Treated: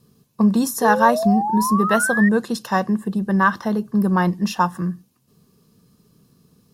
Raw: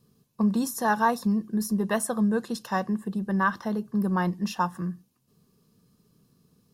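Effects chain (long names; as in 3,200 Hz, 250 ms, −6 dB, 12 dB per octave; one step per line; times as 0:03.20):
harmonic generator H 7 −44 dB, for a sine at −11 dBFS
sound drawn into the spectrogram rise, 0:00.81–0:02.29, 440–1,900 Hz −30 dBFS
level +7.5 dB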